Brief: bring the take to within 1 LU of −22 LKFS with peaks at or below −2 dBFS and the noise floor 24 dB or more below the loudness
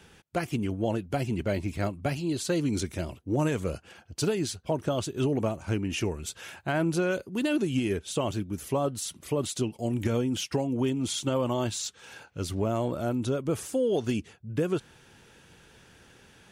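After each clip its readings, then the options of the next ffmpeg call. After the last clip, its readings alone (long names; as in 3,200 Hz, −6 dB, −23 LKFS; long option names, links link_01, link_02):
integrated loudness −30.0 LKFS; sample peak −15.5 dBFS; target loudness −22.0 LKFS
→ -af "volume=8dB"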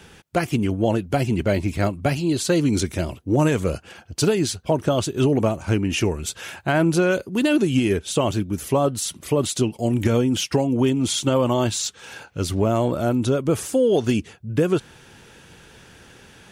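integrated loudness −22.0 LKFS; sample peak −7.5 dBFS; background noise floor −49 dBFS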